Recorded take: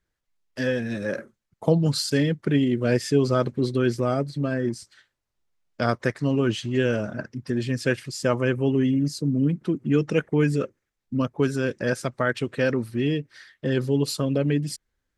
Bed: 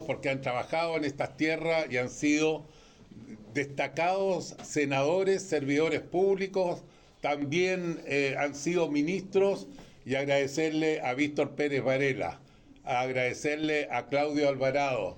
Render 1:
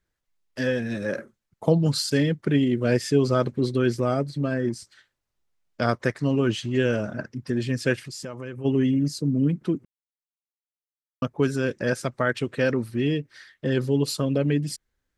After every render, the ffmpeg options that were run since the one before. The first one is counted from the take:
-filter_complex "[0:a]asplit=3[s0][s1][s2];[s0]afade=t=out:st=8.03:d=0.02[s3];[s1]acompressor=threshold=0.0224:ratio=4:attack=3.2:release=140:knee=1:detection=peak,afade=t=in:st=8.03:d=0.02,afade=t=out:st=8.64:d=0.02[s4];[s2]afade=t=in:st=8.64:d=0.02[s5];[s3][s4][s5]amix=inputs=3:normalize=0,asplit=3[s6][s7][s8];[s6]atrim=end=9.85,asetpts=PTS-STARTPTS,afade=t=out:st=9.846:d=0.004:c=hsin[s9];[s7]atrim=start=9.85:end=11.22,asetpts=PTS-STARTPTS,volume=0[s10];[s8]atrim=start=11.22,asetpts=PTS-STARTPTS,afade=t=in:d=0.004:c=hsin[s11];[s9][s10][s11]concat=n=3:v=0:a=1"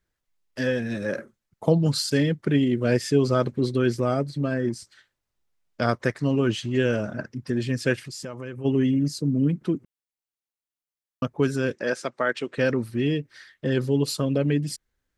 -filter_complex "[0:a]asettb=1/sr,asplit=3[s0][s1][s2];[s0]atrim=end=11.754[s3];[s1]atrim=start=11.75:end=12.58,asetpts=PTS-STARTPTS,afade=t=in:d=0.004:c=qsin,afade=t=out:st=0.826:d=0.004:c=qsin,highpass=290,lowpass=7700[s4];[s2]atrim=start=12.576[s5];[s3][s4]acrossfade=d=0.004:c1=hsin:c2=qsin[s6];[s6][s5]acrossfade=d=0.004:c1=qsin:c2=hsin"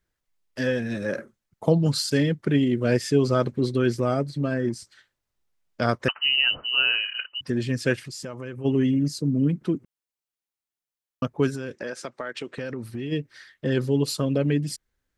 -filter_complex "[0:a]asettb=1/sr,asplit=3[s0][s1][s2];[s0]atrim=end=6.084[s3];[s1]atrim=start=6.08:end=7.41,asetpts=PTS-STARTPTS,afade=t=in:d=0.004:c=qsin,afade=t=out:st=1.326:d=0.004:c=qsin,lowpass=f=2600:t=q:w=0.5098,lowpass=f=2600:t=q:w=0.6013,lowpass=f=2600:t=q:w=0.9,lowpass=f=2600:t=q:w=2.563,afreqshift=-3100[s4];[s2]atrim=start=7.406[s5];[s3][s4]acrossfade=d=0.004:c1=hsin:c2=qsin[s6];[s6][s5]acrossfade=d=0.004:c1=qsin:c2=hsin,asplit=3[s7][s8][s9];[s7]afade=t=out:st=11.49:d=0.02[s10];[s8]acompressor=threshold=0.0398:ratio=6:attack=3.2:release=140:knee=1:detection=peak,afade=t=in:st=11.49:d=0.02,afade=t=out:st=13.11:d=0.02[s11];[s9]afade=t=in:st=13.11:d=0.02[s12];[s10][s11][s12]amix=inputs=3:normalize=0"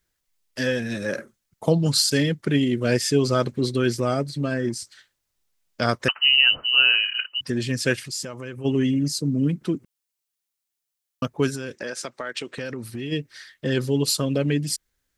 -af "highshelf=f=2700:g=9.5"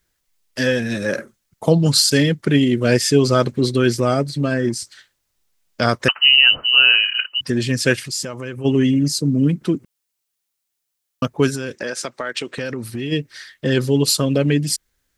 -af "volume=1.88,alimiter=limit=0.794:level=0:latency=1"

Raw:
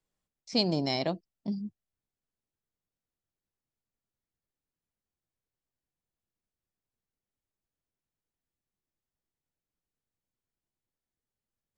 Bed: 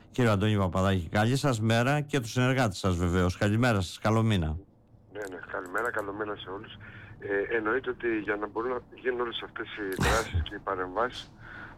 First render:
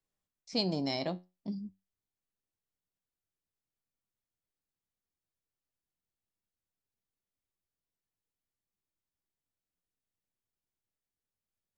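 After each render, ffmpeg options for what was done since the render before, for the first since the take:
-af "flanger=delay=9.8:depth=1.4:regen=74:speed=0.45:shape=triangular"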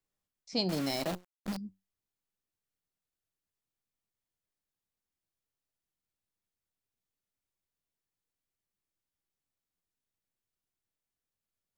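-filter_complex "[0:a]asettb=1/sr,asplit=3[s0][s1][s2];[s0]atrim=end=0.694[s3];[s1]atrim=start=0.69:end=1.57,asetpts=PTS-STARTPTS,afade=t=in:d=0.004:c=qsin,afade=t=out:st=0.876:d=0.004:c=qsin,acrusher=bits=7:dc=4:mix=0:aa=0.000001[s4];[s2]atrim=start=1.566[s5];[s3][s4]acrossfade=d=0.004:c1=hsin:c2=qsin[s6];[s6][s5]acrossfade=d=0.004:c1=qsin:c2=hsin"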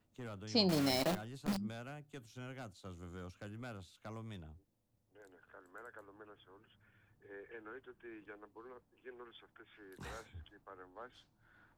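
-filter_complex "[1:a]volume=0.0708[s0];[0:a][s0]amix=inputs=2:normalize=0"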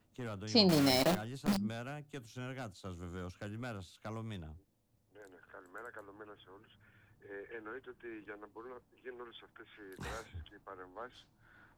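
-af "volume=1.68"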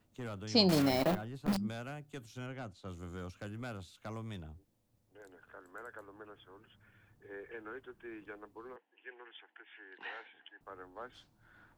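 -filter_complex "[0:a]asettb=1/sr,asplit=3[s0][s1][s2];[s0]atrim=end=0.824[s3];[s1]atrim=start=0.82:end=1.53,asetpts=PTS-STARTPTS,afade=t=in:d=0.004:c=qsin,afade=t=out:st=0.706:d=0.004:c=qsin,equalizer=f=7200:w=0.46:g=-10[s4];[s2]atrim=start=1.526[s5];[s3][s4]acrossfade=d=0.004:c1=hsin:c2=qsin[s6];[s6][s5]acrossfade=d=0.004:c1=qsin:c2=hsin,asettb=1/sr,asplit=3[s7][s8][s9];[s7]atrim=end=2.464[s10];[s8]atrim=start=2.46:end=2.88,asetpts=PTS-STARTPTS,afade=t=in:d=0.004:c=qsin,afade=t=out:st=0.416:d=0.004:c=qsin,aemphasis=mode=reproduction:type=50kf[s11];[s9]atrim=start=2.876[s12];[s10][s11]acrossfade=d=0.004:c1=hsin:c2=qsin[s13];[s13][s12]acrossfade=d=0.004:c1=qsin:c2=hsin,asettb=1/sr,asplit=3[s14][s15][s16];[s14]atrim=end=8.764[s17];[s15]atrim=start=8.76:end=10.61,asetpts=PTS-STARTPTS,afade=t=in:d=0.004:c=qsin,afade=t=out:st=1.846:d=0.004:c=qsin,highpass=f=370:w=0.5412,highpass=f=370:w=1.3066,equalizer=f=400:t=q:w=4:g=-6,equalizer=f=580:t=q:w=4:g=-9,equalizer=f=840:t=q:w=4:g=3,equalizer=f=1200:t=q:w=4:g=-10,equalizer=f=1800:t=q:w=4:g=7,equalizer=f=2900:t=q:w=4:g=9,lowpass=f=3000:w=0.5412,lowpass=f=3000:w=1.3066[s18];[s16]atrim=start=10.606[s19];[s17][s18]acrossfade=d=0.004:c1=hsin:c2=qsin[s20];[s20][s19]acrossfade=d=0.004:c1=qsin:c2=hsin"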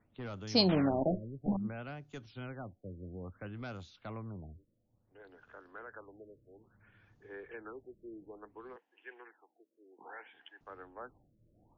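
-af "afftfilt=real='re*lt(b*sr/1024,610*pow(7200/610,0.5+0.5*sin(2*PI*0.59*pts/sr)))':imag='im*lt(b*sr/1024,610*pow(7200/610,0.5+0.5*sin(2*PI*0.59*pts/sr)))':win_size=1024:overlap=0.75"

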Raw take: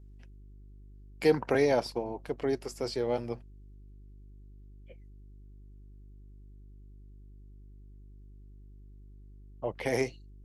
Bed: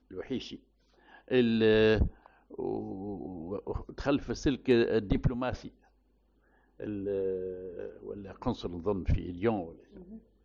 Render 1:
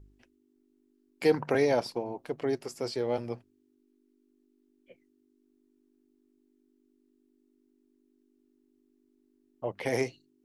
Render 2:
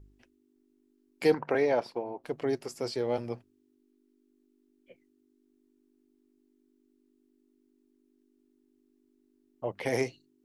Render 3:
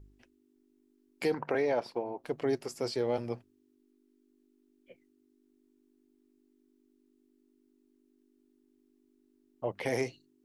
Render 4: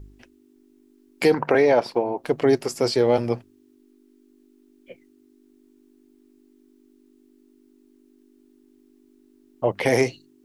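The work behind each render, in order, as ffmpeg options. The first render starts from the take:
-af "bandreject=f=50:t=h:w=4,bandreject=f=100:t=h:w=4,bandreject=f=150:t=h:w=4,bandreject=f=200:t=h:w=4"
-filter_complex "[0:a]asettb=1/sr,asplit=3[s0][s1][s2];[s0]atrim=end=1.344[s3];[s1]atrim=start=1.34:end=2.24,asetpts=PTS-STARTPTS,afade=t=in:d=0.004:c=qsin,afade=t=out:st=0.896:d=0.004:c=qsin,bass=f=250:g=-8,treble=f=4000:g=-13[s4];[s2]atrim=start=2.236[s5];[s3][s4]acrossfade=d=0.004:c1=hsin:c2=qsin[s6];[s6][s5]acrossfade=d=0.004:c1=qsin:c2=hsin"
-af "alimiter=limit=0.0944:level=0:latency=1:release=89"
-af "volume=3.98"

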